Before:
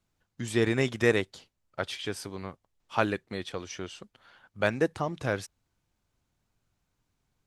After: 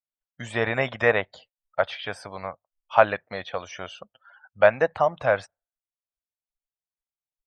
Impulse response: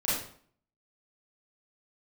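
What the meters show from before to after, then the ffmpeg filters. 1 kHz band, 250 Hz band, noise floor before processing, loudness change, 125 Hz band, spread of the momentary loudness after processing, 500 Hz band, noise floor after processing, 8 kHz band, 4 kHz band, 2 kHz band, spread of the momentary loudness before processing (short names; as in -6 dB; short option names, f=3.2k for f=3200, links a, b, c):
+10.0 dB, -5.5 dB, -79 dBFS, +6.0 dB, -2.0 dB, 17 LU, +7.0 dB, under -85 dBFS, n/a, +0.5 dB, +6.5 dB, 16 LU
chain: -filter_complex "[0:a]acrossover=split=2700[a][b];[b]acompressor=threshold=-49dB:ratio=4:attack=1:release=60[c];[a][c]amix=inputs=2:normalize=0,afftdn=nr=36:nf=-53,lowshelf=f=470:t=q:w=3:g=-8.5,volume=7dB"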